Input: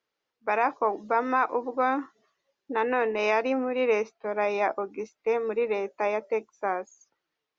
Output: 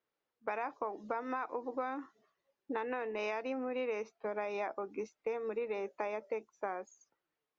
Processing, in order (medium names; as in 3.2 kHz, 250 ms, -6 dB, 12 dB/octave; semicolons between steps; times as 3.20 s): compression, threshold -31 dBFS, peak gain reduction 12 dB; tape noise reduction on one side only decoder only; trim -3 dB